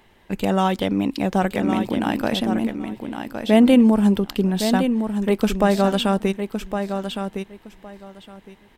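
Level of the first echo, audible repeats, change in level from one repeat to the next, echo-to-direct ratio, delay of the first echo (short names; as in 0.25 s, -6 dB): -7.5 dB, 2, -15.0 dB, -7.5 dB, 1.112 s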